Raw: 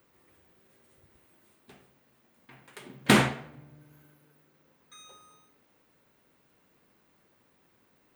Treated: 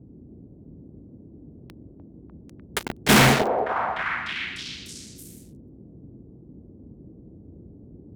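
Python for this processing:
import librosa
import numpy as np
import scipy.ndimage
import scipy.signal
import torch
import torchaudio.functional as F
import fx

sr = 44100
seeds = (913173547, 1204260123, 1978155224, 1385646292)

y = fx.fuzz(x, sr, gain_db=43.0, gate_db=-41.0)
y = fx.dmg_noise_band(y, sr, seeds[0], low_hz=48.0, high_hz=320.0, level_db=-46.0)
y = fx.echo_stepped(y, sr, ms=299, hz=580.0, octaves=0.7, feedback_pct=70, wet_db=0.0)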